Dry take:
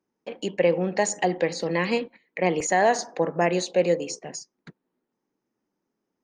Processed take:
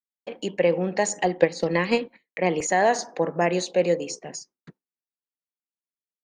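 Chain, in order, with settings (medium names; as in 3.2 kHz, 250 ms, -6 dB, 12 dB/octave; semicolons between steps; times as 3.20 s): expander -44 dBFS; 1.25–1.99 s: transient shaper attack +7 dB, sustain -4 dB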